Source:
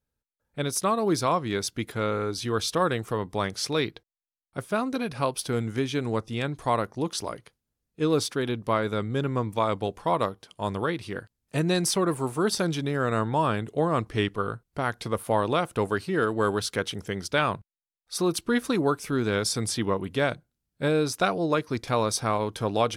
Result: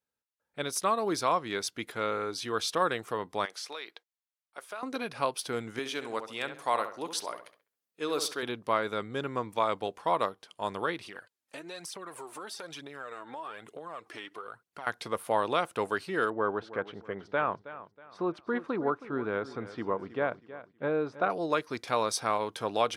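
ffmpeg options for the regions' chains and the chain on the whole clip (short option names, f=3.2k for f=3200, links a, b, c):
-filter_complex "[0:a]asettb=1/sr,asplit=3[a][b][c];[a]atrim=end=3.454[d];[b]atrim=start=3.45:end=4.83,asetpts=PTS-STARTPTS,afade=t=in:d=0.004:c=qsin,afade=t=out:st=1.376:d=0.004:c=qsin,highpass=570,acompressor=threshold=-33dB:ratio=5:attack=3.2:release=140:knee=1:detection=peak[e];[c]atrim=start=4.826[f];[d][e]acrossfade=d=0.004:c1=hsin:c2=qsin[g];[g][f]acrossfade=d=0.004:c1=qsin:c2=hsin,asettb=1/sr,asplit=3[h][i][j];[h]atrim=end=5.794[k];[i]atrim=start=5.79:end=8.43,asetpts=PTS-STARTPTS,afade=t=in:d=0.004:c=qsin,afade=t=out:st=2.636:d=0.004:c=qsin,highpass=f=420:p=1,highshelf=f=12k:g=10.5,asplit=2[l][m];[m]adelay=67,lowpass=f=2.6k:p=1,volume=-9dB,asplit=2[n][o];[o]adelay=67,lowpass=f=2.6k:p=1,volume=0.37,asplit=2[p][q];[q]adelay=67,lowpass=f=2.6k:p=1,volume=0.37,asplit=2[r][s];[s]adelay=67,lowpass=f=2.6k:p=1,volume=0.37[t];[l][n][p][r][t]amix=inputs=5:normalize=0,atrim=end_sample=116424[u];[j]atrim=start=8.426[v];[k][u]acrossfade=d=0.004:c1=hsin:c2=qsin[w];[w][v]acrossfade=d=0.004:c1=qsin:c2=hsin,asettb=1/sr,asplit=3[x][y][z];[x]atrim=end=11.054[aa];[y]atrim=start=11.05:end=14.87,asetpts=PTS-STARTPTS,afade=t=in:d=0.004:c=qsin,afade=t=out:st=3.816:d=0.004:c=qsin,highpass=f=360:p=1,aphaser=in_gain=1:out_gain=1:delay=3.9:decay=0.52:speed=1.1:type=triangular,acompressor=threshold=-35dB:ratio=6:attack=3.2:release=140:knee=1:detection=peak[ab];[z]atrim=start=14.866[ac];[aa][ab]acrossfade=d=0.004:c1=hsin:c2=qsin[ad];[ad][ac]acrossfade=d=0.004:c1=qsin:c2=hsin,asettb=1/sr,asplit=3[ae][af][ag];[ae]atrim=end=16.304[ah];[af]atrim=start=16.3:end=21.3,asetpts=PTS-STARTPTS,afade=t=in:d=0.004:c=qsin,afade=t=out:st=4.996:d=0.004:c=qsin,lowpass=1.4k,aecho=1:1:320|640|960:0.178|0.0605|0.0206,atrim=end_sample=220500[ai];[ag]atrim=start=21.296[aj];[ah][ai]acrossfade=d=0.004:c1=hsin:c2=qsin[ak];[ak][aj]acrossfade=d=0.004:c1=qsin:c2=hsin,highpass=f=630:p=1,highshelf=f=4.5k:g=-5.5"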